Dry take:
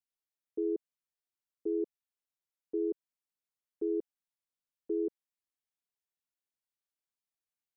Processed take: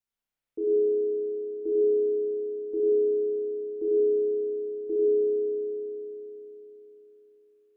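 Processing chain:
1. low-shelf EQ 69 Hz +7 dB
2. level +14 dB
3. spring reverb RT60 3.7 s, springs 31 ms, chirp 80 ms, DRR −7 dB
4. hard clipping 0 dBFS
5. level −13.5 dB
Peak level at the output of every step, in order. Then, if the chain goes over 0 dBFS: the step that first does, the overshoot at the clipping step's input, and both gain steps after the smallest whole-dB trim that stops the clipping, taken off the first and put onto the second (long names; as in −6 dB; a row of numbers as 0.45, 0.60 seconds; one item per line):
−25.0, −11.0, −3.5, −3.5, −17.0 dBFS
no step passes full scale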